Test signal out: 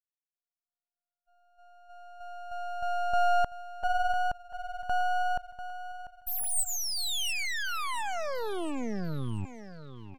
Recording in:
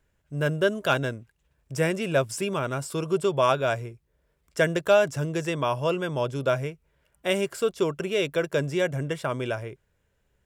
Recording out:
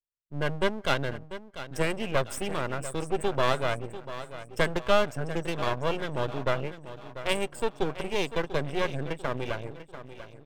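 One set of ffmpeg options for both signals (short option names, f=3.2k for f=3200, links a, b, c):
-filter_complex "[0:a]equalizer=f=8.2k:t=o:w=0.25:g=9,bandreject=f=7.6k:w=7.1,asplit=2[a][b];[b]adelay=170,highpass=300,lowpass=3.4k,asoftclip=type=hard:threshold=-18dB,volume=-28dB[c];[a][c]amix=inputs=2:normalize=0,afftdn=nr=34:nf=-38,aeval=exprs='0.355*(cos(1*acos(clip(val(0)/0.355,-1,1)))-cos(1*PI/2))+0.00224*(cos(6*acos(clip(val(0)/0.355,-1,1)))-cos(6*PI/2))':c=same,equalizer=f=3.2k:t=o:w=0.77:g=2,asplit=2[d][e];[e]aecho=0:1:693|1386|2079|2772:0.224|0.0963|0.0414|0.0178[f];[d][f]amix=inputs=2:normalize=0,aeval=exprs='max(val(0),0)':c=same"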